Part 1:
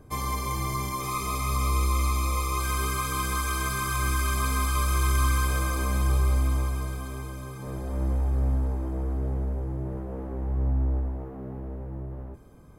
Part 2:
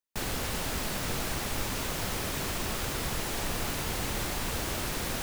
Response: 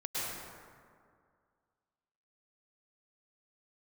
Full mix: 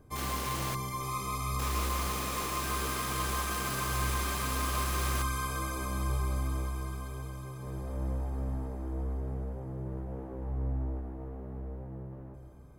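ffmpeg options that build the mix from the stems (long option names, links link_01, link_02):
-filter_complex "[0:a]volume=-8dB,asplit=2[link_01][link_02];[link_02]volume=-10dB[link_03];[1:a]asoftclip=type=hard:threshold=-30.5dB,highpass=frequency=170:width=0.5412,highpass=frequency=170:width=1.3066,volume=-3dB,asplit=3[link_04][link_05][link_06];[link_04]atrim=end=0.75,asetpts=PTS-STARTPTS,afade=type=out:start_time=0.746:duration=0.004:curve=hsin[link_07];[link_05]atrim=start=0.75:end=1.59,asetpts=PTS-STARTPTS,volume=0[link_08];[link_06]atrim=start=1.59,asetpts=PTS-STARTPTS,afade=type=in:duration=0.004:curve=hsin[link_09];[link_07][link_08][link_09]concat=n=3:v=0:a=1[link_10];[2:a]atrim=start_sample=2205[link_11];[link_03][link_11]afir=irnorm=-1:irlink=0[link_12];[link_01][link_10][link_12]amix=inputs=3:normalize=0"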